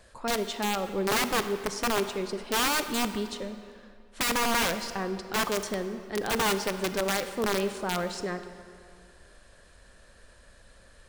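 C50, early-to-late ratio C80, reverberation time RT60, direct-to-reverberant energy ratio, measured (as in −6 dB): 10.0 dB, 11.0 dB, 2.3 s, 9.5 dB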